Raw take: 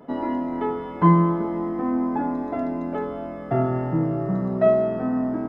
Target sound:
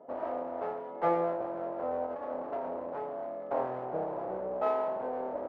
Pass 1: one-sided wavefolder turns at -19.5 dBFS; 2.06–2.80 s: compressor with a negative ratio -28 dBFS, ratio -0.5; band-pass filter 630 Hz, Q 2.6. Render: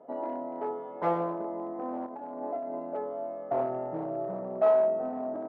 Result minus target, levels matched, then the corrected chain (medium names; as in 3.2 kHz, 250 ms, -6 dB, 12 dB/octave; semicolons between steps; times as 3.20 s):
one-sided wavefolder: distortion -12 dB
one-sided wavefolder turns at -30.5 dBFS; 2.06–2.80 s: compressor with a negative ratio -28 dBFS, ratio -0.5; band-pass filter 630 Hz, Q 2.6